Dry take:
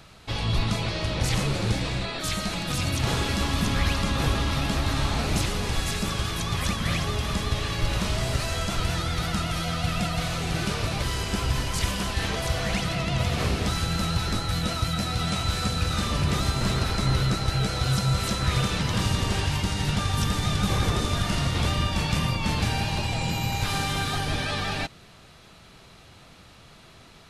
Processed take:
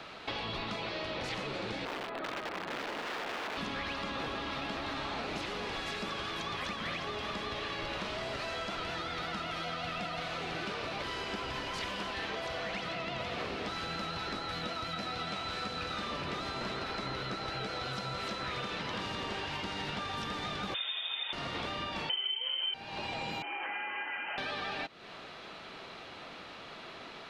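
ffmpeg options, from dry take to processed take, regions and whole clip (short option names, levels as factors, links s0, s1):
-filter_complex "[0:a]asettb=1/sr,asplit=3[s0][s1][s2];[s0]atrim=end=1.854[s3];[s1]atrim=start=1.85:end=3.57,asetpts=PTS-STARTPTS,afade=t=in:d=0.004:c=qsin,afade=t=out:st=1.716:d=0.004:c=qsin,lowpass=1400,aeval=exprs='(mod(20*val(0)+1,2)-1)/20':c=same[s4];[s2]atrim=start=3.566[s5];[s3][s4]acrossfade=d=0.004:c1=hsin:c2=qsin[s6];[s6][s5]acrossfade=d=0.004:c1=qsin:c2=hsin,asettb=1/sr,asplit=3[s7][s8][s9];[s7]atrim=end=20.744[s10];[s8]atrim=start=20.74:end=21.33,asetpts=PTS-STARTPTS,afade=t=in:d=0.004:c=qsin,afade=t=out:st=0.586:d=0.004:c=qsin,lowpass=f=3100:t=q:w=0.5098,lowpass=f=3100:t=q:w=0.6013,lowpass=f=3100:t=q:w=0.9,lowpass=f=3100:t=q:w=2.563,afreqshift=-3700,highpass=f=320:w=0.5412,highpass=f=320:w=1.3066[s11];[s9]atrim=start=21.326[s12];[s10][s11]acrossfade=d=0.004:c1=hsin:c2=qsin[s13];[s13][s12]acrossfade=d=0.004:c1=qsin:c2=hsin,asettb=1/sr,asplit=3[s14][s15][s16];[s14]atrim=end=22.094[s17];[s15]atrim=start=22.09:end=22.74,asetpts=PTS-STARTPTS,afade=t=in:d=0.004:c=qsin,afade=t=out:st=0.646:d=0.004:c=qsin,equalizer=f=80:w=0.36:g=11.5,aecho=1:1:7.4:0.97,atrim=end_sample=28665,lowpass=f=2700:t=q:w=0.5098,lowpass=f=2700:t=q:w=0.6013,lowpass=f=2700:t=q:w=0.9,lowpass=f=2700:t=q:w=2.563,afreqshift=-3200[s18];[s16]atrim=start=22.736[s19];[s17][s18]acrossfade=d=0.004:c1=hsin:c2=qsin[s20];[s20][s19]acrossfade=d=0.004:c1=qsin:c2=hsin,asettb=1/sr,asplit=3[s21][s22][s23];[s21]atrim=end=23.424[s24];[s22]atrim=start=23.42:end=24.38,asetpts=PTS-STARTPTS,afade=t=in:d=0.004:c=qsin,afade=t=out:st=0.956:d=0.004:c=qsin,highpass=f=1100:p=1,acrusher=bits=8:dc=4:mix=0:aa=0.000001,lowpass=f=2700:t=q:w=0.5098,lowpass=f=2700:t=q:w=0.6013,lowpass=f=2700:t=q:w=0.9,lowpass=f=2700:t=q:w=2.563,afreqshift=-3200[s25];[s23]atrim=start=24.376[s26];[s24][s25]acrossfade=d=0.004:c1=hsin:c2=qsin[s27];[s27][s26]acrossfade=d=0.004:c1=qsin:c2=hsin,acrossover=split=240 4500:gain=0.112 1 0.0891[s28][s29][s30];[s28][s29][s30]amix=inputs=3:normalize=0,acompressor=threshold=0.00794:ratio=6,volume=2.11"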